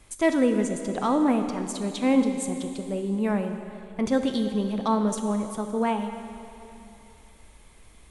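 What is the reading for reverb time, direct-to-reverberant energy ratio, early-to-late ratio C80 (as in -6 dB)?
2.9 s, 6.0 dB, 7.5 dB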